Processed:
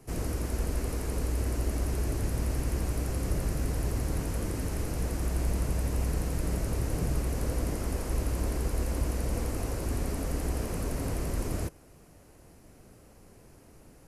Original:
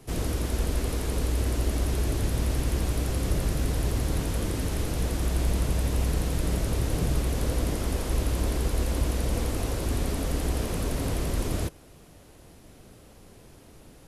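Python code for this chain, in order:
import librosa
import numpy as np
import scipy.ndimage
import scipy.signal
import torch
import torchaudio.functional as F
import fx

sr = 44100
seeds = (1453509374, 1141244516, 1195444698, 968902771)

y = fx.peak_eq(x, sr, hz=3500.0, db=-9.5, octaves=0.51)
y = y * librosa.db_to_amplitude(-3.5)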